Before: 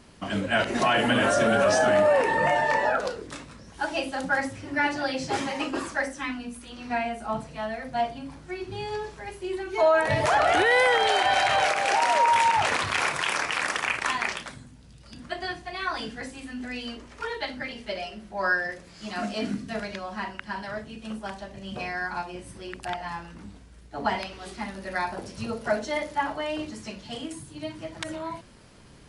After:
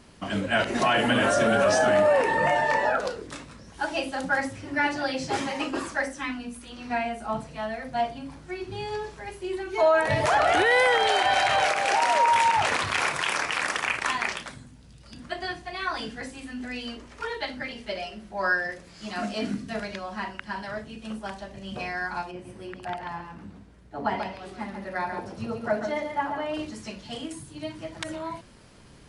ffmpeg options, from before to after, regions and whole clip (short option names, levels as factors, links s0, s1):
-filter_complex "[0:a]asettb=1/sr,asplit=3[s0][s1][s2];[s0]atrim=end=22.314[s3];[s1]atrim=start=22.31:end=26.54,asetpts=PTS-STARTPTS,afade=t=in:d=0.004:c=qsin,afade=t=out:st=4.226:d=0.004:c=qsin,highpass=f=72:w=0.5412,highpass=f=72:w=1.3066,highshelf=f=2800:g=-11,aecho=1:1:139:0.447,atrim=end_sample=186543[s4];[s2]atrim=start=26.536[s5];[s3][s4]acrossfade=d=0.004:c1=hsin:c2=qsin[s6];[s6][s5]acrossfade=d=0.004:c1=qsin:c2=hsin"